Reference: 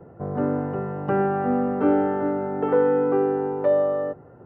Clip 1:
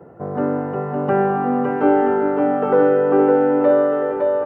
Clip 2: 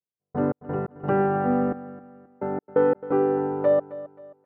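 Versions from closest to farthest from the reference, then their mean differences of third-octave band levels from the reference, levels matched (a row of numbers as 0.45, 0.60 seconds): 1, 2; 3.0, 6.0 decibels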